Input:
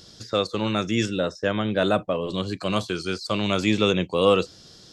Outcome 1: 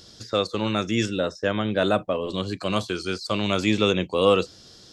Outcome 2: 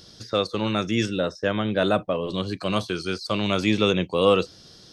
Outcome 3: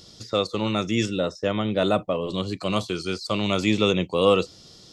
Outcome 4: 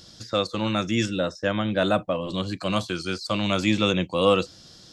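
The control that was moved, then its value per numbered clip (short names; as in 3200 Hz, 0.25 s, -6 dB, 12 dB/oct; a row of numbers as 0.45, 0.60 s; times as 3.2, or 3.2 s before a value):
notch, frequency: 160, 7300, 1600, 420 Hz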